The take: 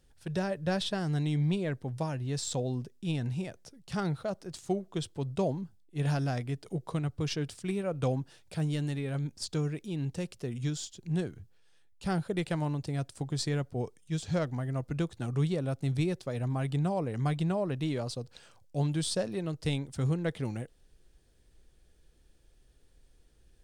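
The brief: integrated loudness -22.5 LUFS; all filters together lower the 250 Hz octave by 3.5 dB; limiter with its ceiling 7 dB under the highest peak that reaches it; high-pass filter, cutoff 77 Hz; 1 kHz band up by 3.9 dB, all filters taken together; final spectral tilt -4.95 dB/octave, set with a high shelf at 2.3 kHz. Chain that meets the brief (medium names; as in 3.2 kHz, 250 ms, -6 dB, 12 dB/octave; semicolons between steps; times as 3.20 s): high-pass 77 Hz; peaking EQ 250 Hz -6.5 dB; peaking EQ 1 kHz +5 dB; treble shelf 2.3 kHz +5.5 dB; trim +12.5 dB; peak limiter -10.5 dBFS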